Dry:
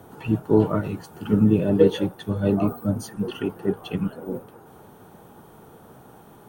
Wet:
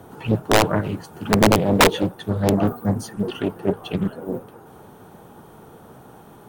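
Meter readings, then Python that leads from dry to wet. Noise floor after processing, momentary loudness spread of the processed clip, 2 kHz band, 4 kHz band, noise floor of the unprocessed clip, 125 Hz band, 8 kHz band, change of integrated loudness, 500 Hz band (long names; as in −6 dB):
−46 dBFS, 13 LU, +15.0 dB, +13.0 dB, −49 dBFS, +1.5 dB, +16.0 dB, +2.5 dB, +1.5 dB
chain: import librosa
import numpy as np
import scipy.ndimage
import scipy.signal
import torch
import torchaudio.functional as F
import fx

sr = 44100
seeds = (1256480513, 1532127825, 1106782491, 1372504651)

y = (np.mod(10.0 ** (9.0 / 20.0) * x + 1.0, 2.0) - 1.0) / 10.0 ** (9.0 / 20.0)
y = fx.doppler_dist(y, sr, depth_ms=0.93)
y = y * librosa.db_to_amplitude(3.0)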